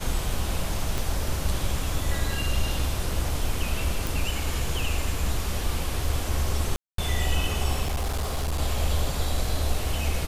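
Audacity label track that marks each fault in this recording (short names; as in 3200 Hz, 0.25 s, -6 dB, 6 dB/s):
0.980000	0.980000	pop
4.070000	4.070000	pop
6.760000	6.980000	gap 0.223 s
7.820000	8.600000	clipped -23 dBFS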